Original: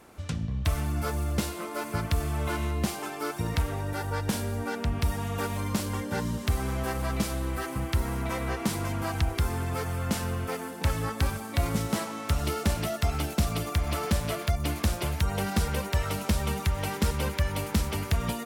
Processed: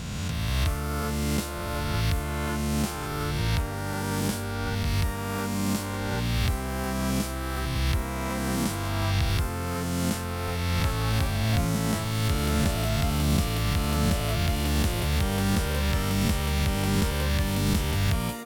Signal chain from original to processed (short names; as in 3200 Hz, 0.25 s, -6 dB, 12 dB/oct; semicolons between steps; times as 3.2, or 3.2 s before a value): spectral swells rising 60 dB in 2.54 s; gain -3 dB